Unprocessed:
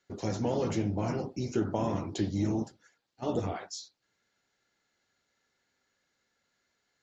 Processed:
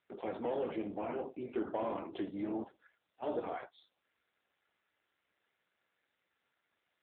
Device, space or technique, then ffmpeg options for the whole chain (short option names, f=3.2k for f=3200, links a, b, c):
telephone: -filter_complex "[0:a]asettb=1/sr,asplit=3[a][b][c];[a]atrim=end=0.564[d];[b]atrim=start=0.56:end=1.16,asetpts=PTS-STARTPTS,afade=t=in:d=0.004:c=qsin,afade=t=out:st=0.596:d=0.004:c=qsin,equalizer=f=1.4k:t=o:w=1.6:g=-2.5[e];[c]atrim=start=1.156[f];[d][e]acrossfade=d=0.004:c1=hsin:c2=qsin[g];[g][f]acrossfade=d=0.004:c1=qsin:c2=hsin,highpass=380,lowpass=3.4k,asoftclip=type=tanh:threshold=-26.5dB" -ar 8000 -c:a libopencore_amrnb -b:a 7400